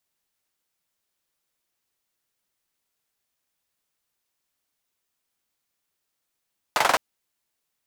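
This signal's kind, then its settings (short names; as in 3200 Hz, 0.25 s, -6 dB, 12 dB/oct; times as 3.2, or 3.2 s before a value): hand clap length 0.21 s, bursts 5, apart 44 ms, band 870 Hz, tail 0.23 s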